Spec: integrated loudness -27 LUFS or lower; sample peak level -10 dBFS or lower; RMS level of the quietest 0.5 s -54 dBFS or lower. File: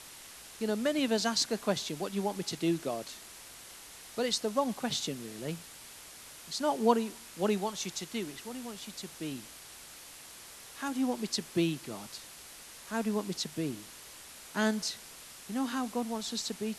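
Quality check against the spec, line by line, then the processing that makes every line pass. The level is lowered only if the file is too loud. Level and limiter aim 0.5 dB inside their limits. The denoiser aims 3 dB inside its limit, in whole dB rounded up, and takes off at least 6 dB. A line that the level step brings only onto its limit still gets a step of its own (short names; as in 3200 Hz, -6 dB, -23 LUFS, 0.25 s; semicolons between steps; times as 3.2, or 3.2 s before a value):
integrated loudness -33.5 LUFS: OK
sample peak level -10.5 dBFS: OK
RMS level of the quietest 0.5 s -50 dBFS: fail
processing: denoiser 7 dB, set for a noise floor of -50 dBFS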